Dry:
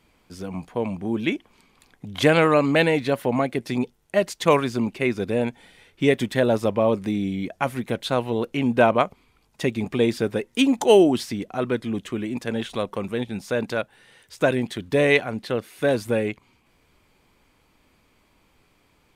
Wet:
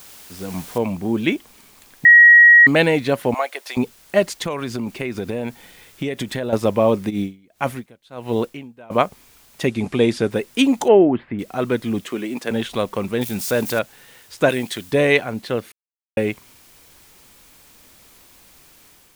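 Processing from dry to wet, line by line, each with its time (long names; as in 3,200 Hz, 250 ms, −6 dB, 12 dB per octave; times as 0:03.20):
0:00.78: noise floor change −43 dB −55 dB
0:02.05–0:02.67: beep over 1,900 Hz −8.5 dBFS
0:03.34–0:03.77: high-pass filter 600 Hz 24 dB per octave
0:04.33–0:06.53: downward compressor 8 to 1, threshold −25 dBFS
0:07.09–0:08.90: tremolo with a sine in dB 2.5 Hz → 0.89 Hz, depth 30 dB
0:09.67–0:10.31: low-pass filter 11,000 Hz 24 dB per octave
0:10.88–0:11.39: inverse Chebyshev low-pass filter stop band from 5,400 Hz, stop band 50 dB
0:12.04–0:12.51: high-pass filter 260 Hz
0:13.21–0:13.79: spike at every zero crossing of −27 dBFS
0:14.49–0:14.92: spectral tilt +2 dB per octave
0:15.72–0:16.17: silence
whole clip: automatic gain control gain up to 4.5 dB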